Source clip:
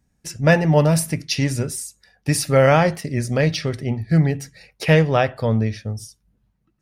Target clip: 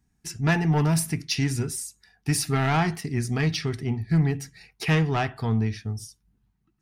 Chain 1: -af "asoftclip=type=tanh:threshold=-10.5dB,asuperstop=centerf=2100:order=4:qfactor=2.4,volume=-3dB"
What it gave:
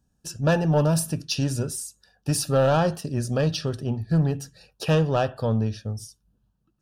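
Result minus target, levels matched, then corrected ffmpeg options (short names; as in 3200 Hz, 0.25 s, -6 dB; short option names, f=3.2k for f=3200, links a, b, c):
500 Hz band +6.5 dB
-af "asoftclip=type=tanh:threshold=-10.5dB,asuperstop=centerf=550:order=4:qfactor=2.4,volume=-3dB"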